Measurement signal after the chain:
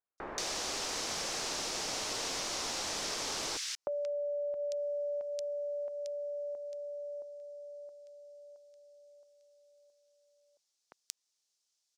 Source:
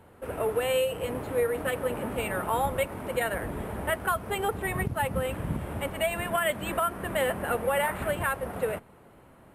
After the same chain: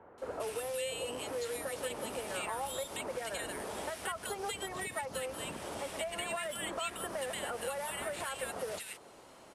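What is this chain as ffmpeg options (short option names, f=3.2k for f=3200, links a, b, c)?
-filter_complex "[0:a]lowpass=f=5.6k:t=q:w=1.9,alimiter=limit=-19.5dB:level=0:latency=1:release=105,acrossover=split=180|2600[a][b][c];[a]acompressor=threshold=-43dB:ratio=4[d];[b]acompressor=threshold=-38dB:ratio=4[e];[c]acompressor=threshold=-51dB:ratio=4[f];[d][e][f]amix=inputs=3:normalize=0,bass=f=250:g=-14,treble=f=4k:g=14,acrossover=split=1700[g][h];[h]adelay=180[i];[g][i]amix=inputs=2:normalize=0,volume=1.5dB"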